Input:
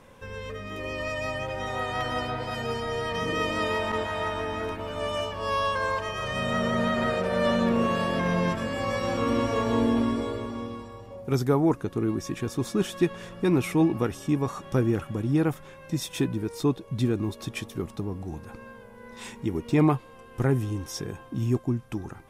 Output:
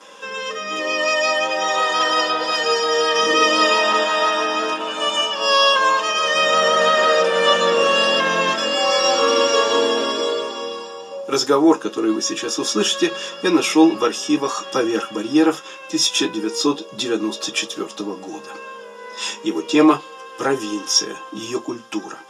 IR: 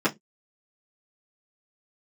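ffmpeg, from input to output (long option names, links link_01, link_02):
-filter_complex "[0:a]highpass=650,lowpass=7100[link_01];[1:a]atrim=start_sample=2205[link_02];[link_01][link_02]afir=irnorm=-1:irlink=0,aexciter=amount=6.2:drive=4.9:freq=3000,volume=-2dB"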